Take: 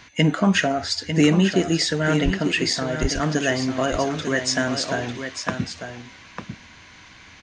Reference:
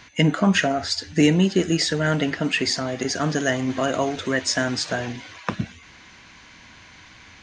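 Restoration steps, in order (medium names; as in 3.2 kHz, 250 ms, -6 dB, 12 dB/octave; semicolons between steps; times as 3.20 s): de-plosive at 2.24/3.01 s; inverse comb 898 ms -8.5 dB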